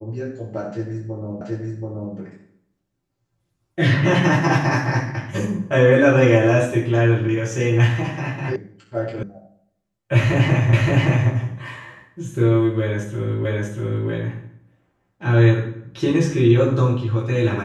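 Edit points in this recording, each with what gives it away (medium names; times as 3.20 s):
1.41 s: repeat of the last 0.73 s
8.56 s: sound stops dead
9.23 s: sound stops dead
10.73 s: repeat of the last 0.57 s
13.45 s: repeat of the last 0.64 s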